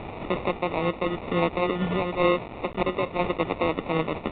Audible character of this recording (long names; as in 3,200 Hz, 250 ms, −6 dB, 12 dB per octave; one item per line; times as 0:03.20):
a quantiser's noise floor 6 bits, dither triangular
tremolo saw down 0.94 Hz, depth 40%
aliases and images of a low sample rate 1,600 Hz, jitter 0%
A-law companding